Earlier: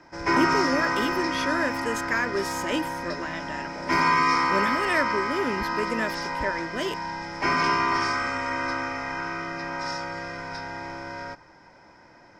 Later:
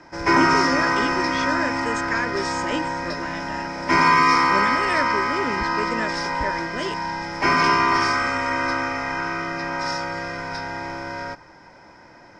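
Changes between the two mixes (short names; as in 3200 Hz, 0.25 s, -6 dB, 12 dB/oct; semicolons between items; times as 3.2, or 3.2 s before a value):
speech: add brick-wall FIR low-pass 8800 Hz; background +5.0 dB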